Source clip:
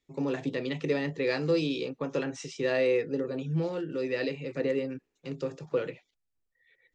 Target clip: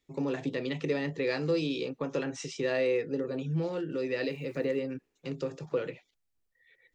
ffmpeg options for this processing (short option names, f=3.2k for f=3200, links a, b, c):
-filter_complex "[0:a]asplit=2[a][b];[b]acompressor=threshold=-35dB:ratio=6,volume=1dB[c];[a][c]amix=inputs=2:normalize=0,asettb=1/sr,asplit=3[d][e][f];[d]atrim=end=4.244[g];[e]atrim=start=4.24:end=4.78,asetpts=PTS-STARTPTS,afade=t=in:d=0.004:c=qsin,afade=t=out:st=0.536:d=0.004:c=qsin,aeval=exprs='val(0)*gte(abs(val(0)),0.00237)':c=same[h];[f]atrim=start=4.776[i];[g][h]acrossfade=d=0.004:c1=hsin:c2=qsin[j];[j][i]acrossfade=d=0.004:c1=qsin:c2=hsin,volume=-4.5dB"